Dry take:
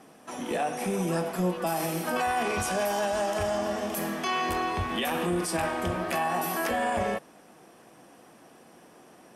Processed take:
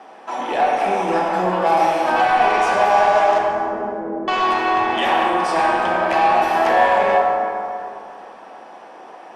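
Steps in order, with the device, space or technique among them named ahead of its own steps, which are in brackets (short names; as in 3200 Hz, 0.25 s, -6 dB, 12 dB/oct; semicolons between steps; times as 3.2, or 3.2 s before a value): intercom (BPF 410–3800 Hz; bell 860 Hz +8.5 dB 0.51 oct; soft clip -21 dBFS, distortion -16 dB); 3.38–4.28 steep low-pass 550 Hz 72 dB/oct; plate-style reverb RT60 2.8 s, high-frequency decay 0.45×, DRR -1.5 dB; gain +8.5 dB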